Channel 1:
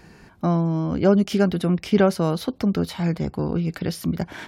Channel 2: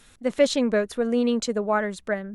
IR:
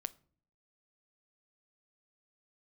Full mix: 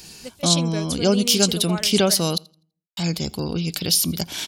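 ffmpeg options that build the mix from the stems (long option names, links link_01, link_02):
-filter_complex "[0:a]deesser=0.6,volume=-4dB,asplit=3[link_01][link_02][link_03];[link_01]atrim=end=2.38,asetpts=PTS-STARTPTS,afade=type=out:start_time=2.376:duration=0.004:curve=hsin[link_04];[link_02]atrim=start=2.38:end=2.97,asetpts=PTS-STARTPTS,volume=0[link_05];[link_03]atrim=start=2.97,asetpts=PTS-STARTPTS,afade=type=in:duration=0.004:curve=hsin[link_06];[link_04][link_05][link_06]concat=n=3:v=0:a=1,asplit=4[link_07][link_08][link_09][link_10];[link_08]volume=-9dB[link_11];[link_09]volume=-23dB[link_12];[1:a]volume=-9.5dB,asplit=2[link_13][link_14];[link_14]volume=-22dB[link_15];[link_10]apad=whole_len=103449[link_16];[link_13][link_16]sidechaingate=range=-33dB:threshold=-50dB:ratio=16:detection=peak[link_17];[2:a]atrim=start_sample=2205[link_18];[link_11][link_15]amix=inputs=2:normalize=0[link_19];[link_19][link_18]afir=irnorm=-1:irlink=0[link_20];[link_12]aecho=0:1:83|166|249|332:1|0.25|0.0625|0.0156[link_21];[link_07][link_17][link_20][link_21]amix=inputs=4:normalize=0,aexciter=amount=9.9:drive=3.7:freq=2700"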